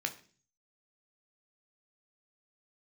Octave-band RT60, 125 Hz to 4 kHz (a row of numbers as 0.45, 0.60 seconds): 0.75, 0.60, 0.45, 0.35, 0.40, 0.50 seconds